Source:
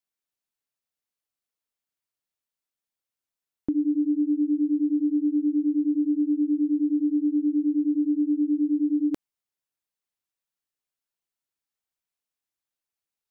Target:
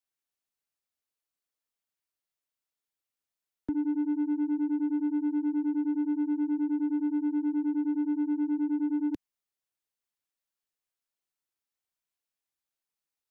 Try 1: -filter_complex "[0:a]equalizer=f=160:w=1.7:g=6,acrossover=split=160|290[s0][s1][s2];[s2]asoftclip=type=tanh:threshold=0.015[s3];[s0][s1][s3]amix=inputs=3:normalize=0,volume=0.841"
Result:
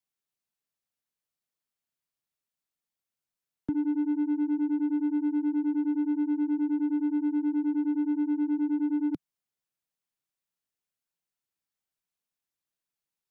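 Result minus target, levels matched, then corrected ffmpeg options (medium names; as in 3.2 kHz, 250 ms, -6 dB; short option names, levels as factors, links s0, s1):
125 Hz band +4.0 dB
-filter_complex "[0:a]equalizer=f=160:w=1.7:g=-3,acrossover=split=160|290[s0][s1][s2];[s2]asoftclip=type=tanh:threshold=0.015[s3];[s0][s1][s3]amix=inputs=3:normalize=0,volume=0.841"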